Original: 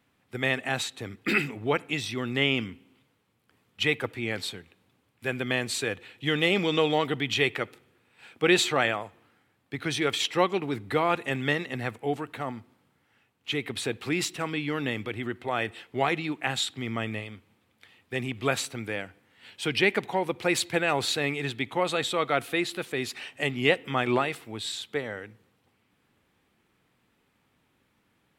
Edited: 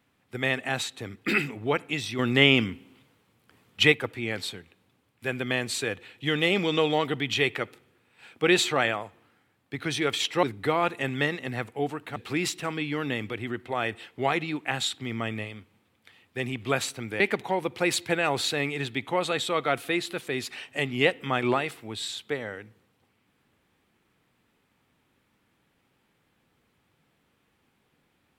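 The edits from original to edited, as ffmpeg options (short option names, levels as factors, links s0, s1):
-filter_complex "[0:a]asplit=6[s0][s1][s2][s3][s4][s5];[s0]atrim=end=2.192[s6];[s1]atrim=start=2.188:end=3.922,asetpts=PTS-STARTPTS,volume=2[s7];[s2]atrim=start=3.918:end=10.432[s8];[s3]atrim=start=10.698:end=12.432[s9];[s4]atrim=start=13.918:end=18.962[s10];[s5]atrim=start=19.838[s11];[s6][s7]acrossfade=d=0.004:c1=hsin:c2=hsin[s12];[s12][s8]acrossfade=d=0.004:c1=hsin:c2=hsin[s13];[s13][s9]acrossfade=d=0.004:c1=hsin:c2=hsin[s14];[s14][s10]acrossfade=d=0.004:c1=hsin:c2=hsin[s15];[s15][s11]acrossfade=d=0.004:c1=hsin:c2=hsin"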